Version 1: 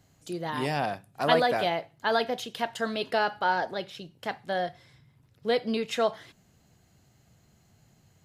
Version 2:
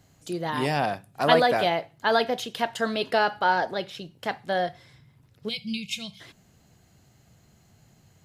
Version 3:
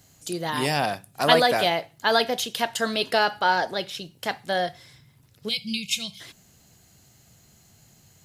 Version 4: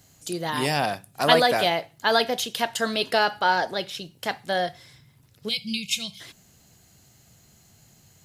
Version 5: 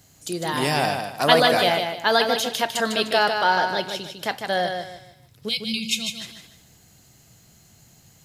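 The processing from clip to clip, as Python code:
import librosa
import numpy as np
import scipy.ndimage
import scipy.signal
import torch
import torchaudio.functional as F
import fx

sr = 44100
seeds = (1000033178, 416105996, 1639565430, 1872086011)

y1 = fx.spec_box(x, sr, start_s=5.48, length_s=0.73, low_hz=230.0, high_hz=2100.0, gain_db=-28)
y1 = F.gain(torch.from_numpy(y1), 3.5).numpy()
y2 = fx.high_shelf(y1, sr, hz=3600.0, db=11.5)
y3 = y2
y4 = fx.echo_feedback(y3, sr, ms=152, feedback_pct=30, wet_db=-6.0)
y4 = F.gain(torch.from_numpy(y4), 1.5).numpy()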